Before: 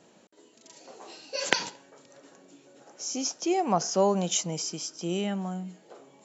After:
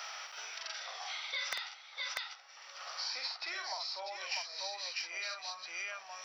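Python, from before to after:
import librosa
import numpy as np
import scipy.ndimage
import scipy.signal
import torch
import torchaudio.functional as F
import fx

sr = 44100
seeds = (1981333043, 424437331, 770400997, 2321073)

y = scipy.signal.sosfilt(scipy.signal.butter(4, 1300.0, 'highpass', fs=sr, output='sos'), x)
y = fx.high_shelf(y, sr, hz=3000.0, db=-11.0)
y = np.clip(y, -10.0 ** (-24.5 / 20.0), 10.0 ** (-24.5 / 20.0))
y = fx.formant_shift(y, sr, semitones=-4)
y = fx.echo_multitap(y, sr, ms=(48, 644), db=(-3.5, -4.0))
y = fx.band_squash(y, sr, depth_pct=100)
y = y * librosa.db_to_amplitude(1.0)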